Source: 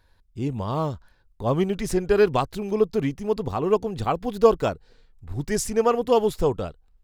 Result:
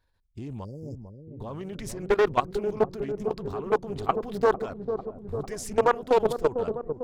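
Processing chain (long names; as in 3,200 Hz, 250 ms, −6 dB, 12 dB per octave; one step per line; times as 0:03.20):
dynamic equaliser 1,300 Hz, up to +5 dB, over −39 dBFS, Q 1.4
output level in coarse steps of 18 dB
time-frequency box erased 0:00.64–0:01.27, 590–4,700 Hz
on a send: delay with a low-pass on its return 449 ms, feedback 68%, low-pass 570 Hz, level −6 dB
on the sum: highs frequency-modulated by the lows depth 0.47 ms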